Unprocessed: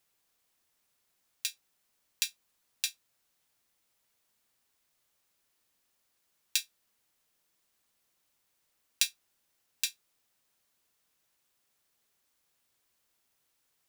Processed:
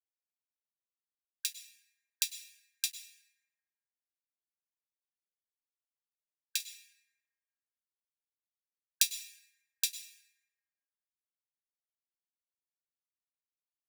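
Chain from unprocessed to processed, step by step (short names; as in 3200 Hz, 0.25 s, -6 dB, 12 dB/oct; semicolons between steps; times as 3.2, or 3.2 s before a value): high shelf 3500 Hz +8 dB, from 2.9 s +3 dB, from 6.6 s +10 dB; bit-crush 8-bit; brick-wall FIR high-pass 1600 Hz; plate-style reverb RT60 1.8 s, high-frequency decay 0.35×, pre-delay 90 ms, DRR 9.5 dB; gain -6.5 dB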